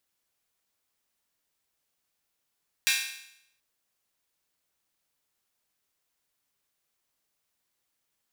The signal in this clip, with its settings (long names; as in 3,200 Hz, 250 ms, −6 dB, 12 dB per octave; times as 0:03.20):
open synth hi-hat length 0.73 s, high-pass 2,100 Hz, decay 0.75 s